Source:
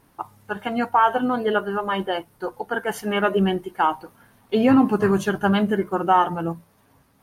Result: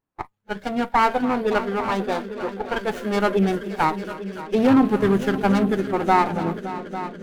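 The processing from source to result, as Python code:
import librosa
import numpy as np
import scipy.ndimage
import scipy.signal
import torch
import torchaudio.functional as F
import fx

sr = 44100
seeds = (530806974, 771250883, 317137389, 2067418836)

y = fx.echo_heads(x, sr, ms=283, heads='all three', feedback_pct=56, wet_db=-16)
y = fx.noise_reduce_blind(y, sr, reduce_db=27)
y = fx.running_max(y, sr, window=9)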